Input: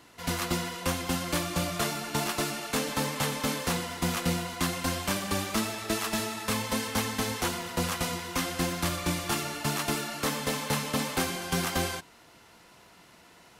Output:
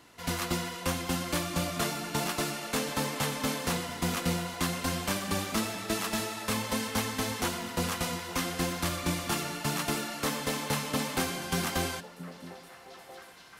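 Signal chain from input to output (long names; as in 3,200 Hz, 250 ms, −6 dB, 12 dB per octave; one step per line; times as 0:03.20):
echo through a band-pass that steps 668 ms, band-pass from 220 Hz, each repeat 1.4 octaves, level −9 dB
level −1.5 dB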